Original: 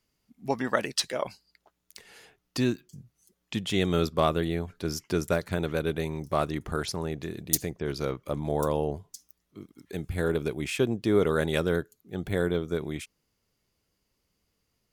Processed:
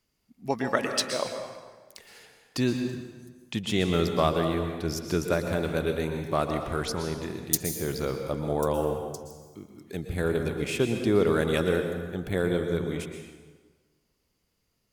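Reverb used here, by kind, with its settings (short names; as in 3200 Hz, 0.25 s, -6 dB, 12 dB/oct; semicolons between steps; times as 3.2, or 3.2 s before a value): plate-style reverb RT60 1.4 s, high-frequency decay 0.75×, pre-delay 0.105 s, DRR 5 dB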